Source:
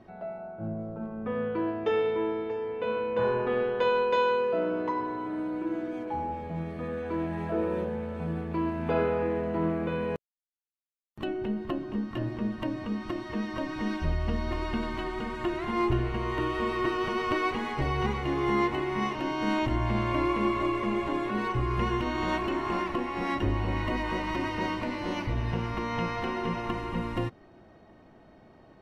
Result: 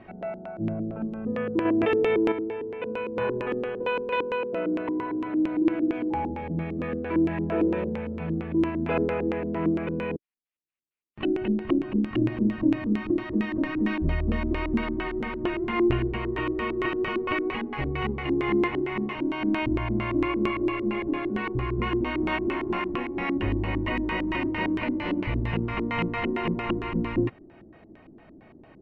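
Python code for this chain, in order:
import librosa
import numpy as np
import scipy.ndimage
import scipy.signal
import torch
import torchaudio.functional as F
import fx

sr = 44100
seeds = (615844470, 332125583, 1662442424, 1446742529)

y = fx.rider(x, sr, range_db=4, speed_s=2.0)
y = fx.filter_lfo_lowpass(y, sr, shape='square', hz=4.4, low_hz=320.0, high_hz=2500.0, q=2.7)
y = fx.env_flatten(y, sr, amount_pct=100, at=(1.65, 2.32))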